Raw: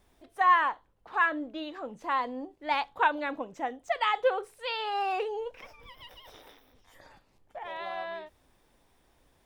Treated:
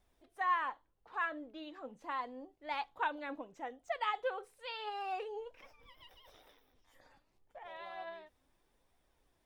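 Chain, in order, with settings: flange 0.78 Hz, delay 1.3 ms, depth 2.8 ms, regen +65%; gain -5.5 dB

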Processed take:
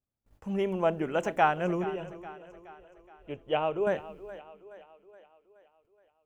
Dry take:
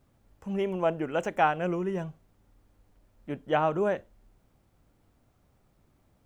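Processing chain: gate -60 dBFS, range -26 dB; 1.84–3.87 EQ curve 110 Hz 0 dB, 200 Hz -14 dB, 430 Hz 0 dB, 1800 Hz -9 dB, 2800 Hz +5 dB, 4400 Hz -13 dB; split-band echo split 320 Hz, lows 0.224 s, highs 0.422 s, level -15.5 dB

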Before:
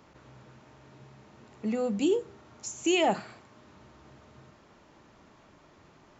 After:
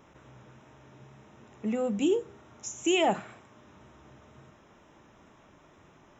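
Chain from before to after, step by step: wow and flutter 26 cents; Butterworth band-stop 4500 Hz, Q 3.6

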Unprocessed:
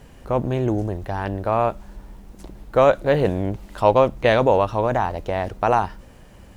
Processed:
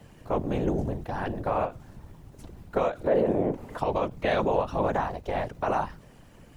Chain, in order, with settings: 3.07–3.79 graphic EQ 125/250/500/1000/2000/4000 Hz -12/+12/+10/+6/+4/-4 dB; limiter -10.5 dBFS, peak gain reduction 14.5 dB; whisperiser; ending taper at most 230 dB/s; gain -5 dB

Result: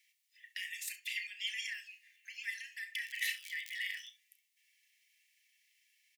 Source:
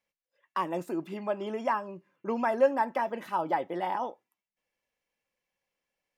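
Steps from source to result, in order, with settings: 3.05–4.06 crackle 120/s -> 53/s -41 dBFS; compressor 10:1, threshold -31 dBFS, peak gain reduction 14 dB; limiter -31 dBFS, peak gain reduction 10 dB; Chebyshev high-pass 1800 Hz, order 8; early reflections 33 ms -11 dB, 67 ms -16.5 dB; gain +15.5 dB

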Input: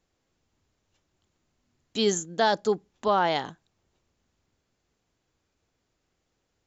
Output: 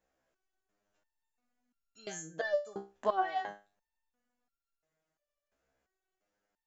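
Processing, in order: fifteen-band EQ 100 Hz -12 dB, 630 Hz +10 dB, 1600 Hz +8 dB, 4000 Hz -4 dB; stepped resonator 2.9 Hz 66–1400 Hz

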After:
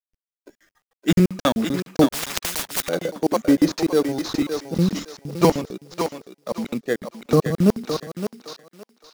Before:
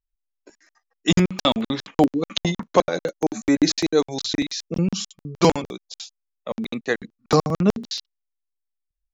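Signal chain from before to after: high shelf 3200 Hz -5.5 dB; in parallel at -3.5 dB: sample-rate reducer 5100 Hz, jitter 0%; on the sum: rotary speaker horn 6 Hz, later 1.1 Hz, at 6.25; companded quantiser 6-bit; on a send: thinning echo 0.565 s, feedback 27%, high-pass 460 Hz, level -5 dB; 2.09–2.89 on the sum: spectral compressor 10:1; gain -1.5 dB

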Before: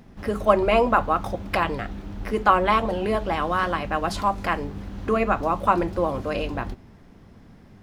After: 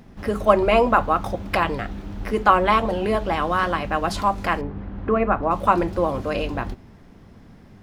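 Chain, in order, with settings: 4.61–5.51 LPF 1900 Hz 12 dB/oct; gain +2 dB

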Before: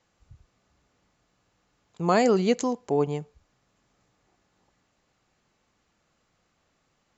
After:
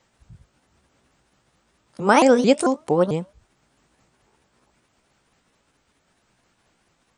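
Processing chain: repeated pitch sweeps +6 st, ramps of 0.222 s; gain +7 dB

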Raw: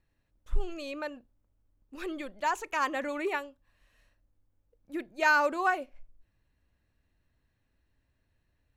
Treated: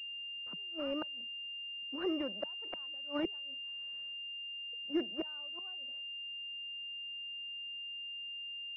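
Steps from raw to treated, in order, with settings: flipped gate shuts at -25 dBFS, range -35 dB; steep high-pass 170 Hz 72 dB/oct; pulse-width modulation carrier 2800 Hz; gain +2.5 dB

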